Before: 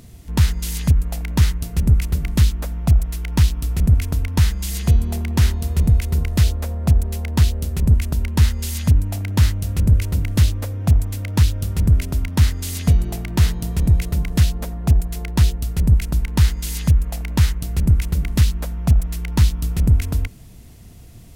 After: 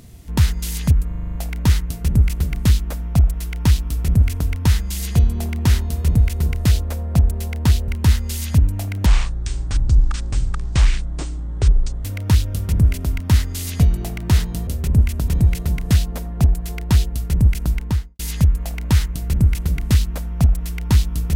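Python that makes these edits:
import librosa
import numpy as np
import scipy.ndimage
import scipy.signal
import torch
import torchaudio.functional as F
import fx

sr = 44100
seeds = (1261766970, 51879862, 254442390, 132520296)

y = fx.studio_fade_out(x, sr, start_s=16.19, length_s=0.47)
y = fx.edit(y, sr, fx.stutter(start_s=1.07, slice_s=0.04, count=8),
    fx.move(start_s=7.6, length_s=0.61, to_s=13.75),
    fx.speed_span(start_s=9.39, length_s=1.73, speed=0.58), tone=tone)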